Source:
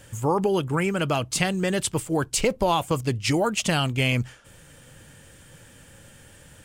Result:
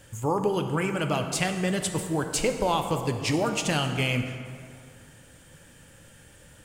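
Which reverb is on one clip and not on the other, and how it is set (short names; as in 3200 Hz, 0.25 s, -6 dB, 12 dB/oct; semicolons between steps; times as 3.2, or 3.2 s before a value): plate-style reverb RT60 2.3 s, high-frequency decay 0.6×, DRR 5.5 dB; gain -3.5 dB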